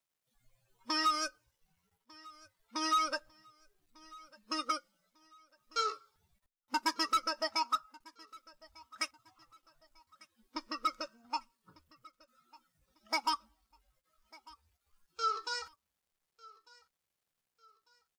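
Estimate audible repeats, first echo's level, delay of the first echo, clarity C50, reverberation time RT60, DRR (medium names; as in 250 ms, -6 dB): 2, -23.0 dB, 1198 ms, no reverb, no reverb, no reverb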